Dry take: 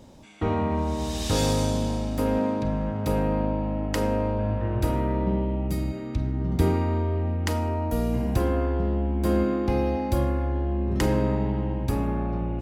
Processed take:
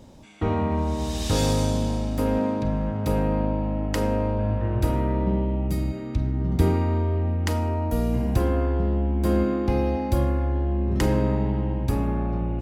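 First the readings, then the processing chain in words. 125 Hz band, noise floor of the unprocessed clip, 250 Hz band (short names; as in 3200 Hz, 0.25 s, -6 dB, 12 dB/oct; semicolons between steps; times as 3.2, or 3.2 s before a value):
+2.5 dB, -32 dBFS, +1.0 dB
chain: low shelf 170 Hz +3 dB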